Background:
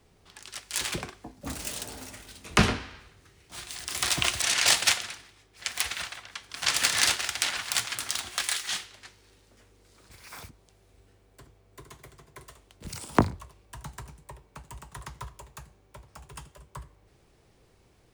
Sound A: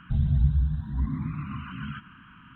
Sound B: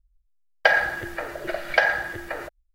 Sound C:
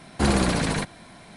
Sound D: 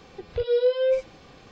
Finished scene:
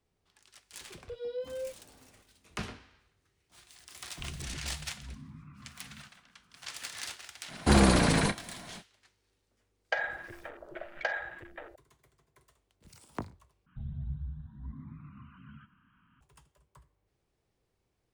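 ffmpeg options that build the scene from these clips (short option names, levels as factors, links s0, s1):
-filter_complex "[1:a]asplit=2[s0][s1];[0:a]volume=0.141[s2];[s0]aeval=exprs='0.112*(abs(mod(val(0)/0.112+3,4)-2)-1)':c=same[s3];[3:a]asplit=2[s4][s5];[s5]adelay=30,volume=0.237[s6];[s4][s6]amix=inputs=2:normalize=0[s7];[2:a]afwtdn=0.0224[s8];[s1]adynamicequalizer=threshold=0.002:dfrequency=1500:dqfactor=0.7:tfrequency=1500:tqfactor=0.7:attack=5:release=100:ratio=0.375:range=2.5:mode=cutabove:tftype=highshelf[s9];[s2]asplit=2[s10][s11];[s10]atrim=end=13.664[s12];[s9]atrim=end=2.55,asetpts=PTS-STARTPTS,volume=0.168[s13];[s11]atrim=start=16.206[s14];[4:a]atrim=end=1.51,asetpts=PTS-STARTPTS,volume=0.158,afade=t=in:d=0.004:c=hsin,afade=t=out:st=1.506:d=0.004:c=hsin,adelay=720[s15];[s3]atrim=end=2.55,asetpts=PTS-STARTPTS,volume=0.133,afade=t=in:d=0.004:c=hsin,afade=t=out:st=2.546:d=0.004:c=hsin,adelay=180369S[s16];[s7]atrim=end=1.36,asetpts=PTS-STARTPTS,volume=0.891,afade=t=in:d=0.05,afade=t=out:st=1.31:d=0.05,adelay=7470[s17];[s8]atrim=end=2.74,asetpts=PTS-STARTPTS,volume=0.211,afade=t=in:d=0.004:c=hsin,afade=t=out:st=2.736:d=0.004:c=hsin,adelay=9270[s18];[s12][s13]acrossfade=d=0.004:c1=hsin:c2=hsin[s19];[s19][s14]acrossfade=d=0.004:c1=hsin:c2=hsin[s20];[s20][s15][s16][s17][s18]amix=inputs=5:normalize=0"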